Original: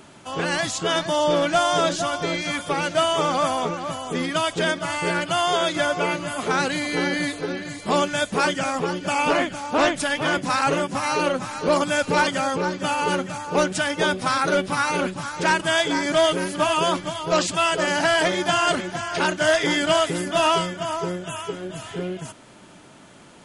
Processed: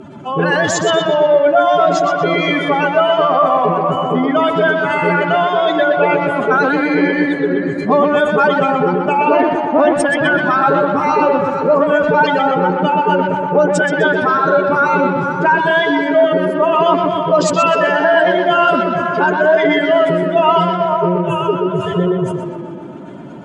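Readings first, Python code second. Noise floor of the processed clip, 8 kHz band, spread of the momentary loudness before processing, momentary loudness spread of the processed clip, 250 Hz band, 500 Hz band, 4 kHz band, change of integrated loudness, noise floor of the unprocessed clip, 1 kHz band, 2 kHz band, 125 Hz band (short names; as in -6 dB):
-26 dBFS, -2.0 dB, 8 LU, 4 LU, +9.5 dB, +10.5 dB, -0.5 dB, +8.5 dB, -47 dBFS, +9.5 dB, +7.0 dB, +9.0 dB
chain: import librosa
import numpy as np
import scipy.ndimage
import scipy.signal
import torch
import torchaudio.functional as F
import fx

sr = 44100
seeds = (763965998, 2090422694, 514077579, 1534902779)

p1 = fx.spec_expand(x, sr, power=2.2)
p2 = fx.rider(p1, sr, range_db=10, speed_s=0.5)
p3 = p1 + (p2 * 10.0 ** (-0.5 / 20.0))
p4 = scipy.signal.sosfilt(scipy.signal.butter(2, 9700.0, 'lowpass', fs=sr, output='sos'), p3)
p5 = fx.echo_tape(p4, sr, ms=124, feedback_pct=78, wet_db=-3, lp_hz=3200.0, drive_db=10.0, wow_cents=37)
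y = p5 * 10.0 ** (2.0 / 20.0)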